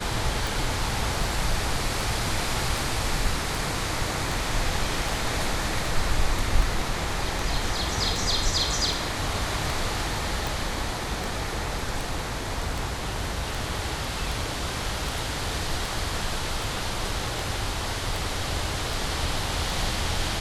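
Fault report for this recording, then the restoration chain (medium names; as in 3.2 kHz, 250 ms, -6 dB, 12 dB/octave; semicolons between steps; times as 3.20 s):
tick 78 rpm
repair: de-click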